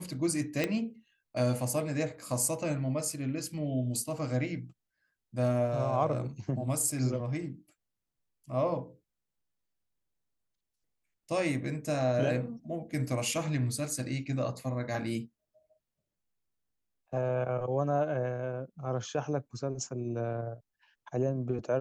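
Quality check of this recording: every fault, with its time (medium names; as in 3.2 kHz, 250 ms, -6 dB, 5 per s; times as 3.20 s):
0.64 s: pop -15 dBFS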